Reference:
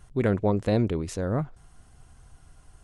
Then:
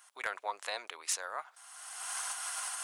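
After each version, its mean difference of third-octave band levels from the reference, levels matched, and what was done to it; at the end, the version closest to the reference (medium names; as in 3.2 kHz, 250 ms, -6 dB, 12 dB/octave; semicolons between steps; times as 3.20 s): 20.0 dB: recorder AGC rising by 32 dB/s; high-pass 900 Hz 24 dB/octave; treble shelf 7.1 kHz +7.5 dB; hard clipper -21 dBFS, distortion -24 dB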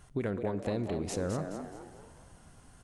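9.0 dB: bass shelf 70 Hz -10 dB; compression, threshold -30 dBFS, peak gain reduction 11 dB; frequency-shifting echo 211 ms, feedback 41%, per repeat +96 Hz, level -7.5 dB; plate-style reverb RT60 2.4 s, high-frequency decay 0.8×, DRR 14.5 dB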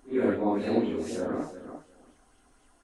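6.5 dB: phase randomisation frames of 200 ms; resonant low shelf 190 Hz -10 dB, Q 3; on a send: feedback delay 349 ms, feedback 16%, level -12 dB; on the sum: sweeping bell 4 Hz 690–3300 Hz +7 dB; trim -4.5 dB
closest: third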